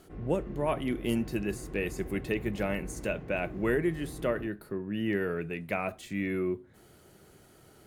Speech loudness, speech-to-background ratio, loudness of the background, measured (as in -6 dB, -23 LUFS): -32.5 LUFS, 11.5 dB, -44.0 LUFS